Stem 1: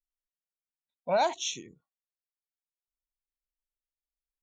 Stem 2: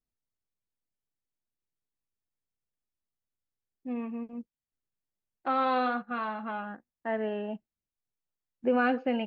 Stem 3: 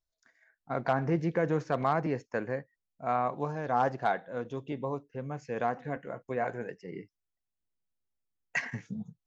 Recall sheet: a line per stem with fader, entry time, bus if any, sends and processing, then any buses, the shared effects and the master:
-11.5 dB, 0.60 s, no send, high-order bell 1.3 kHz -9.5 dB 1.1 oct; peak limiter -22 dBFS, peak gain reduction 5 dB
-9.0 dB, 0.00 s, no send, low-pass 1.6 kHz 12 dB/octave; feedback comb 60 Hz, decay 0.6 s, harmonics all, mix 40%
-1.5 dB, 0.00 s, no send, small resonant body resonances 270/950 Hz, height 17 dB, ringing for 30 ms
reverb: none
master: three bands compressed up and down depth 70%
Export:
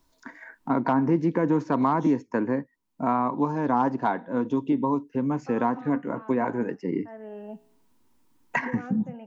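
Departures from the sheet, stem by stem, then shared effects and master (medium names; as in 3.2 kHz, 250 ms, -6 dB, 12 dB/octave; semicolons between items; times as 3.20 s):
stem 1 -11.5 dB -> -22.0 dB; stem 2 -9.0 dB -> -15.5 dB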